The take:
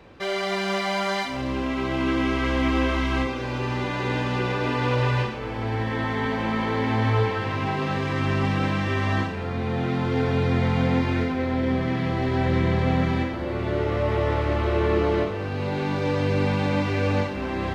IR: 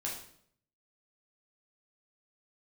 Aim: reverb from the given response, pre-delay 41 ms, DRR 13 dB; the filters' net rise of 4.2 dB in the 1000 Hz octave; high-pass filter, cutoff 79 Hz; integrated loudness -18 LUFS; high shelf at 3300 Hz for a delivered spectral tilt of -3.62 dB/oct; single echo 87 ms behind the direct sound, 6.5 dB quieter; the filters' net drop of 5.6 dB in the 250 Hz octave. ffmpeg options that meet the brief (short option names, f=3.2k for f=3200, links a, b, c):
-filter_complex "[0:a]highpass=79,equalizer=f=250:t=o:g=-7.5,equalizer=f=1k:t=o:g=5,highshelf=f=3.3k:g=6.5,aecho=1:1:87:0.473,asplit=2[a][b];[1:a]atrim=start_sample=2205,adelay=41[c];[b][c]afir=irnorm=-1:irlink=0,volume=-15dB[d];[a][d]amix=inputs=2:normalize=0,volume=5.5dB"